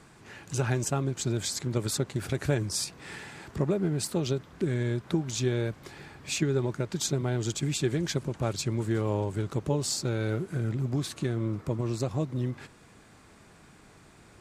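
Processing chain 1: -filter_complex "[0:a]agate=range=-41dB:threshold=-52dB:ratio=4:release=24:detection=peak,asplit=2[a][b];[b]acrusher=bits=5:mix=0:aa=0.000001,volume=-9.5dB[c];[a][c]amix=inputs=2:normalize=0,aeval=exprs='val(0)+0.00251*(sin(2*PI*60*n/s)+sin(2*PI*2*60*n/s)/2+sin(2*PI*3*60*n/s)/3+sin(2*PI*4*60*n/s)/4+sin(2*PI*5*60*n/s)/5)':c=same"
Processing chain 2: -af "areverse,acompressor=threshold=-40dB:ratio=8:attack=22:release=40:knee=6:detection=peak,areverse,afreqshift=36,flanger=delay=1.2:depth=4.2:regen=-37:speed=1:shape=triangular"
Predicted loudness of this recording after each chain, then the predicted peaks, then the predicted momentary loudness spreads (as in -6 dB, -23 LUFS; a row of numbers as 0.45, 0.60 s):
-27.5, -43.5 LUFS; -10.0, -28.0 dBFS; 5, 13 LU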